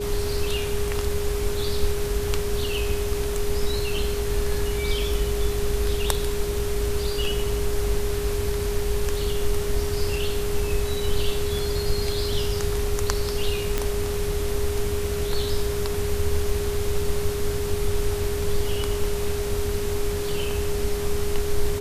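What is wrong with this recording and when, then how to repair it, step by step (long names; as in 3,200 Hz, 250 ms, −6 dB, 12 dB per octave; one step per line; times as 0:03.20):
whistle 410 Hz −27 dBFS
0:13.78: click −8 dBFS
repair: click removal
notch filter 410 Hz, Q 30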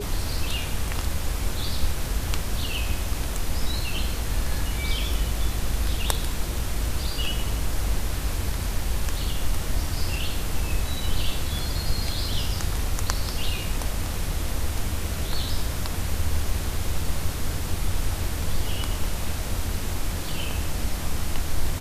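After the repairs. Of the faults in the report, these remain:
none of them is left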